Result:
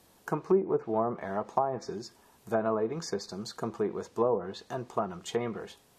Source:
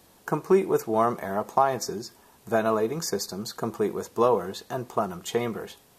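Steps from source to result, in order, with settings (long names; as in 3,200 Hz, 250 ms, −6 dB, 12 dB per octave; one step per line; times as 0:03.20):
treble cut that deepens with the level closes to 780 Hz, closed at −17.5 dBFS
level −4.5 dB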